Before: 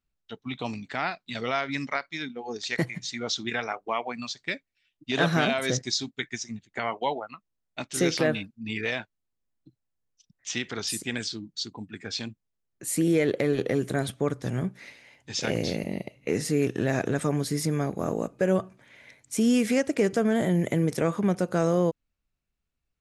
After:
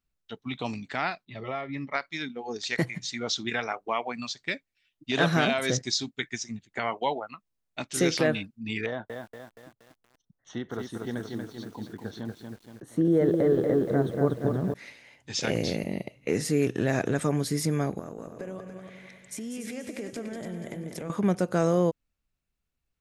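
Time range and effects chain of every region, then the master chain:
1.25–1.94 Butterworth band-stop 1500 Hz, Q 6.2 + tape spacing loss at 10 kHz 37 dB + notch comb 240 Hz
8.86–14.74 running mean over 18 samples + bell 830 Hz +2 dB 2.1 oct + lo-fi delay 0.236 s, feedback 55%, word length 9-bit, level -4.5 dB
17.99–21.1 compressor, threshold -35 dBFS + multi-head echo 96 ms, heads second and third, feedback 41%, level -8 dB
whole clip: dry

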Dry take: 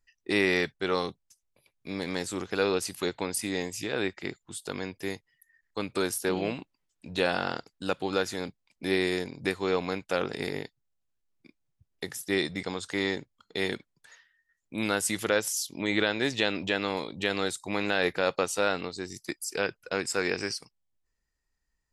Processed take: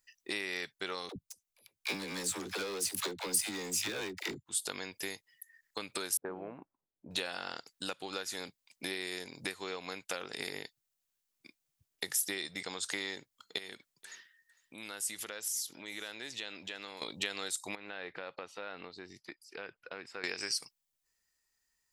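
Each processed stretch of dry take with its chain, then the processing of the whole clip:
1.09–4.46 low shelf 280 Hz +7.5 dB + sample leveller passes 3 + dispersion lows, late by 71 ms, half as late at 400 Hz
6.17–7.11 LPF 1400 Hz 24 dB/oct + low-pass opened by the level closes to 390 Hz, open at -27.5 dBFS
13.58–17.02 compressor 2.5:1, threshold -48 dBFS + echo 0.452 s -22 dB
17.75–20.24 compressor 2.5:1, threshold -41 dBFS + air absorption 350 m
whole clip: compressor 10:1, threshold -34 dBFS; tilt +3 dB/oct

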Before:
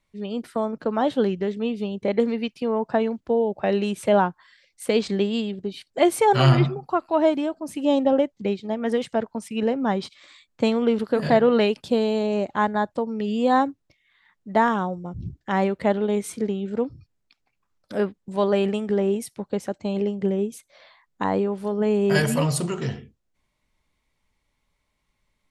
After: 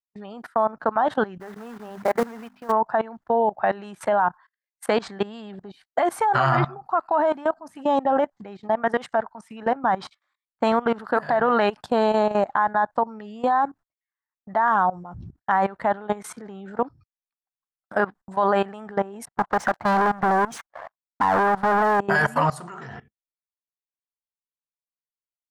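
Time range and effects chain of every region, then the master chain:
1.4–2.72 LPF 2500 Hz + notches 50/100/150/200/250 Hz + short-mantissa float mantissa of 2-bit
19.25–22 low-pass opened by the level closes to 520 Hz, open at -20.5 dBFS + compressor, threshold -30 dBFS + sample leveller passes 5
whole clip: gate -41 dBFS, range -32 dB; band shelf 1100 Hz +15.5 dB; level quantiser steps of 19 dB

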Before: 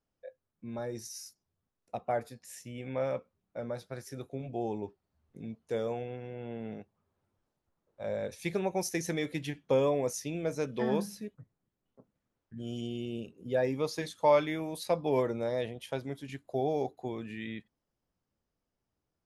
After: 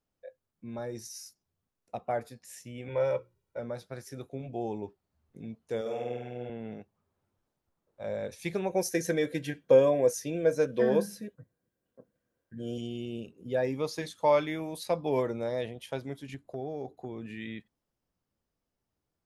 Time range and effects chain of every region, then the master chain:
2.88–3.59 notches 60/120/180/240/300/360 Hz + comb 2.1 ms, depth 91%
5.81–6.5 HPF 360 Hz 6 dB/oct + bell 1000 Hz -9 dB 0.44 oct + flutter echo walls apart 8.4 m, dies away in 1.2 s
8.69–12.78 high shelf 8000 Hz +5.5 dB + notch comb 430 Hz + small resonant body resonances 460/1600 Hz, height 13 dB, ringing for 25 ms
16.34–17.26 tilt shelf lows +4 dB, about 770 Hz + compressor 2.5:1, threshold -36 dBFS
whole clip: dry

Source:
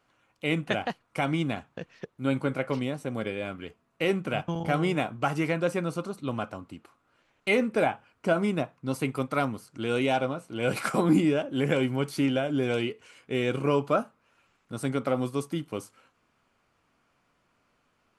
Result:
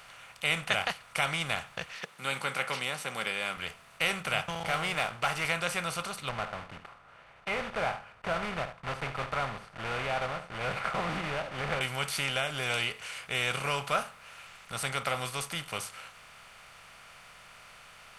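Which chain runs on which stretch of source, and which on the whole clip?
1.91–3.57 HPF 170 Hz 24 dB/oct + notch 650 Hz, Q 7
4.5–5.45 HPF 930 Hz 6 dB/oct + tilt -3.5 dB/oct + sample leveller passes 1
6.29–11.81 block floating point 3-bit + LPF 1100 Hz + echo 73 ms -17.5 dB
whole clip: per-bin compression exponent 0.6; passive tone stack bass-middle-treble 10-0-10; gain +5 dB

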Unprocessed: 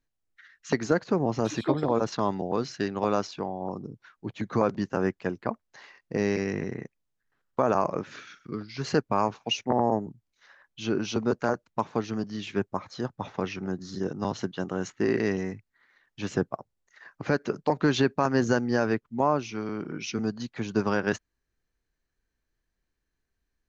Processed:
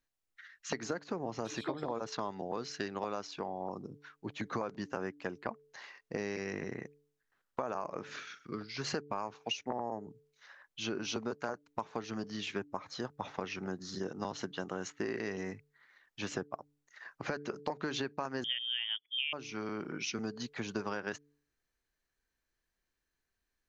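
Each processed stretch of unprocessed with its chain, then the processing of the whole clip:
18.44–19.33 high shelf 2000 Hz -9 dB + inverted band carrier 3400 Hz
whole clip: low shelf 370 Hz -8.5 dB; de-hum 145.5 Hz, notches 3; compressor 6:1, threshold -33 dBFS

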